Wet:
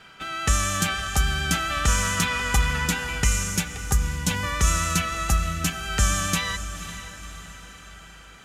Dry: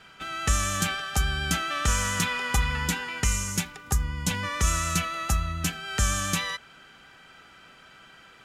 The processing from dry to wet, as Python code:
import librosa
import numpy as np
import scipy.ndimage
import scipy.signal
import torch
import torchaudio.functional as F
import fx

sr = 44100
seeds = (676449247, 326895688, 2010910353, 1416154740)

y = fx.echo_diffused(x, sr, ms=518, feedback_pct=50, wet_db=-12.0)
y = F.gain(torch.from_numpy(y), 2.5).numpy()